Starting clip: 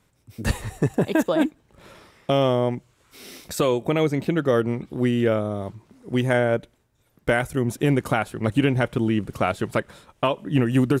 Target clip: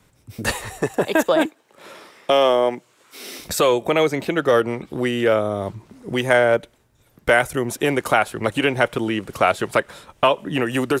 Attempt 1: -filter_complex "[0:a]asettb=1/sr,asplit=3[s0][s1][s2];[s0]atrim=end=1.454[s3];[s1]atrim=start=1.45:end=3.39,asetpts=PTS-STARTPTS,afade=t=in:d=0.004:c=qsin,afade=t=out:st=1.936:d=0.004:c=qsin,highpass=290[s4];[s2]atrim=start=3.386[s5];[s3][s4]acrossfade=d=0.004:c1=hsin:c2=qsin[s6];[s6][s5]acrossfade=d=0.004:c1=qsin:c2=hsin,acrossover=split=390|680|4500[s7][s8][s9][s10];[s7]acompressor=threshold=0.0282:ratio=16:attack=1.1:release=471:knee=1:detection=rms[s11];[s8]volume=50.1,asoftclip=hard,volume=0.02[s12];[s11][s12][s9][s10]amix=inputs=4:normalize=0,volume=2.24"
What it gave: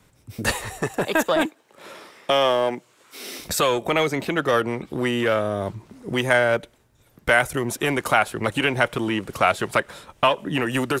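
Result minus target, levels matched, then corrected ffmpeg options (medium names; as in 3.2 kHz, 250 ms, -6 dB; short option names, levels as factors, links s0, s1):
overload inside the chain: distortion +15 dB
-filter_complex "[0:a]asettb=1/sr,asplit=3[s0][s1][s2];[s0]atrim=end=1.454[s3];[s1]atrim=start=1.45:end=3.39,asetpts=PTS-STARTPTS,afade=t=in:d=0.004:c=qsin,afade=t=out:st=1.936:d=0.004:c=qsin,highpass=290[s4];[s2]atrim=start=3.386[s5];[s3][s4]acrossfade=d=0.004:c1=hsin:c2=qsin[s6];[s6][s5]acrossfade=d=0.004:c1=qsin:c2=hsin,acrossover=split=390|680|4500[s7][s8][s9][s10];[s7]acompressor=threshold=0.0282:ratio=16:attack=1.1:release=471:knee=1:detection=rms[s11];[s8]volume=12.6,asoftclip=hard,volume=0.0794[s12];[s11][s12][s9][s10]amix=inputs=4:normalize=0,volume=2.24"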